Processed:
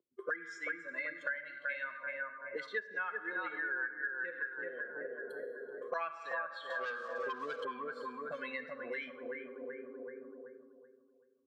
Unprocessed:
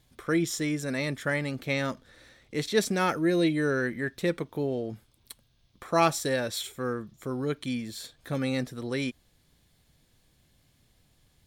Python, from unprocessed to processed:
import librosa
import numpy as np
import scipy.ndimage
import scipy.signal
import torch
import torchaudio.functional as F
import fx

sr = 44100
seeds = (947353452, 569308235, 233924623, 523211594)

y = fx.bin_expand(x, sr, power=2.0)
y = y + 0.53 * np.pad(y, (int(1.9 * sr / 1000.0), 0))[:len(y)]
y = fx.rev_plate(y, sr, seeds[0], rt60_s=1.5, hf_ratio=0.75, predelay_ms=0, drr_db=9.0)
y = fx.auto_wah(y, sr, base_hz=340.0, top_hz=1600.0, q=4.2, full_db=-33.0, direction='up')
y = fx.high_shelf_res(y, sr, hz=2600.0, db=9.0, q=1.5, at=(1.21, 1.84))
y = fx.leveller(y, sr, passes=3, at=(6.7, 7.65))
y = scipy.signal.sosfilt(scipy.signal.butter(4, 210.0, 'highpass', fs=sr, output='sos'), y)
y = fx.echo_bbd(y, sr, ms=381, stages=4096, feedback_pct=35, wet_db=-4)
y = fx.env_lowpass_down(y, sr, base_hz=2100.0, full_db=-36.0)
y = fx.band_squash(y, sr, depth_pct=100)
y = F.gain(torch.from_numpy(y), 3.5).numpy()